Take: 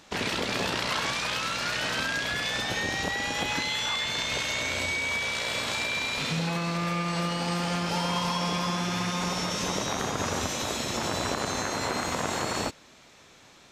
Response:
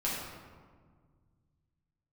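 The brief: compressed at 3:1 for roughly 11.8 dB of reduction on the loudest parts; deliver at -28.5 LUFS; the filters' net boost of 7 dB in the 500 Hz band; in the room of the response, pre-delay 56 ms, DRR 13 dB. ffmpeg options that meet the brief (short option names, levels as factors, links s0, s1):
-filter_complex "[0:a]equalizer=f=500:t=o:g=8.5,acompressor=threshold=0.0126:ratio=3,asplit=2[s0][s1];[1:a]atrim=start_sample=2205,adelay=56[s2];[s1][s2]afir=irnorm=-1:irlink=0,volume=0.106[s3];[s0][s3]amix=inputs=2:normalize=0,volume=2.51"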